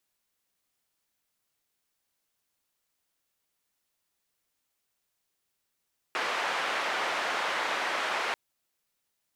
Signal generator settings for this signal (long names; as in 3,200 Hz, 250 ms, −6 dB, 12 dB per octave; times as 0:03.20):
band-limited noise 540–1,900 Hz, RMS −30.5 dBFS 2.19 s